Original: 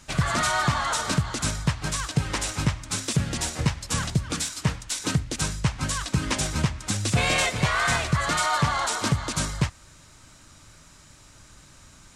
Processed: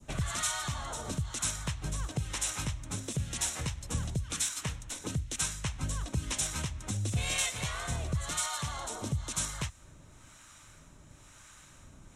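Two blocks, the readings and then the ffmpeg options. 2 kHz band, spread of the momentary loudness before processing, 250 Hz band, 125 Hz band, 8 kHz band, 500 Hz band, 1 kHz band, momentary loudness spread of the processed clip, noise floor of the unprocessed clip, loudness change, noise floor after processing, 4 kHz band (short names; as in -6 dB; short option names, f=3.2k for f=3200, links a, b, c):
-12.5 dB, 6 LU, -11.5 dB, -9.0 dB, -4.0 dB, -12.0 dB, -14.0 dB, 7 LU, -52 dBFS, -8.5 dB, -56 dBFS, -8.5 dB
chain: -filter_complex "[0:a]adynamicequalizer=threshold=0.0126:dfrequency=1800:dqfactor=0.7:tfrequency=1800:tqfactor=0.7:attack=5:release=100:ratio=0.375:range=3:mode=cutabove:tftype=bell,acrossover=split=780[a][b];[a]aeval=exprs='val(0)*(1-0.7/2+0.7/2*cos(2*PI*1*n/s))':c=same[c];[b]aeval=exprs='val(0)*(1-0.7/2-0.7/2*cos(2*PI*1*n/s))':c=same[d];[c][d]amix=inputs=2:normalize=0,equalizer=f=4.7k:t=o:w=0.24:g=-13,acrossover=split=100|2900[e][f][g];[f]acompressor=threshold=-38dB:ratio=5[h];[e][h][g]amix=inputs=3:normalize=0"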